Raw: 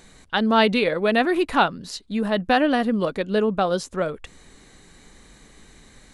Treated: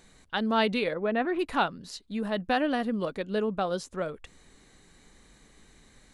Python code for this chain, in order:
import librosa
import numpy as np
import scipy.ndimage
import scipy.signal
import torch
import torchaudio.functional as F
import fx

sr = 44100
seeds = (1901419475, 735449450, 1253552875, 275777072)

y = fx.lowpass(x, sr, hz=fx.line((0.93, 1400.0), (1.38, 2700.0)), slope=12, at=(0.93, 1.38), fade=0.02)
y = y * 10.0 ** (-7.5 / 20.0)